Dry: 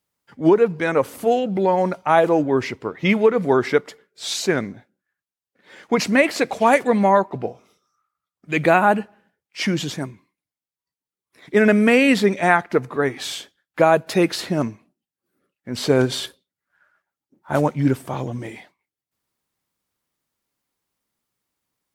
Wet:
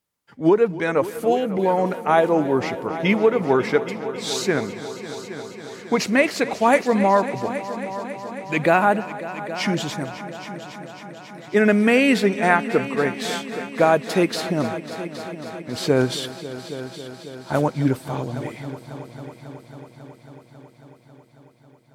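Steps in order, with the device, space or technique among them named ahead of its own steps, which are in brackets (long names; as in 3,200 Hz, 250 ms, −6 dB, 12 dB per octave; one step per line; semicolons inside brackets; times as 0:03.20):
multi-head tape echo (echo machine with several playback heads 273 ms, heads all three, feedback 66%, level −17.5 dB; tape wow and flutter 13 cents)
level −1.5 dB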